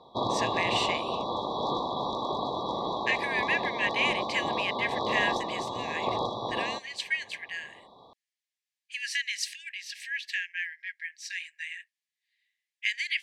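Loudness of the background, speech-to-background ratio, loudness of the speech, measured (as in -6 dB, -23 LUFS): -31.5 LUFS, -0.5 dB, -32.0 LUFS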